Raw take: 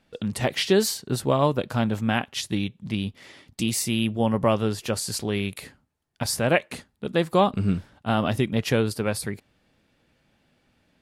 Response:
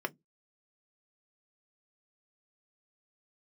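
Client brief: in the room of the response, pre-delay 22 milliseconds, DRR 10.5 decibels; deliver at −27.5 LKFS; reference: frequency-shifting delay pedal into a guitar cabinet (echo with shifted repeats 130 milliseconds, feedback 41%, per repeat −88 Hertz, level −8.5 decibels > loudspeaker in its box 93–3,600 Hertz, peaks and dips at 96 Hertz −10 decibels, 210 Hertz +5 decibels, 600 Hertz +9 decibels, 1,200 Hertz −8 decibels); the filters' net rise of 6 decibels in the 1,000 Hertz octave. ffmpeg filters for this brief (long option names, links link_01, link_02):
-filter_complex "[0:a]equalizer=frequency=1000:width_type=o:gain=8.5,asplit=2[link_01][link_02];[1:a]atrim=start_sample=2205,adelay=22[link_03];[link_02][link_03]afir=irnorm=-1:irlink=0,volume=-15dB[link_04];[link_01][link_04]amix=inputs=2:normalize=0,asplit=6[link_05][link_06][link_07][link_08][link_09][link_10];[link_06]adelay=130,afreqshift=-88,volume=-8.5dB[link_11];[link_07]adelay=260,afreqshift=-176,volume=-16.2dB[link_12];[link_08]adelay=390,afreqshift=-264,volume=-24dB[link_13];[link_09]adelay=520,afreqshift=-352,volume=-31.7dB[link_14];[link_10]adelay=650,afreqshift=-440,volume=-39.5dB[link_15];[link_05][link_11][link_12][link_13][link_14][link_15]amix=inputs=6:normalize=0,highpass=93,equalizer=frequency=96:width_type=q:width=4:gain=-10,equalizer=frequency=210:width_type=q:width=4:gain=5,equalizer=frequency=600:width_type=q:width=4:gain=9,equalizer=frequency=1200:width_type=q:width=4:gain=-8,lowpass=frequency=3600:width=0.5412,lowpass=frequency=3600:width=1.3066,volume=-7.5dB"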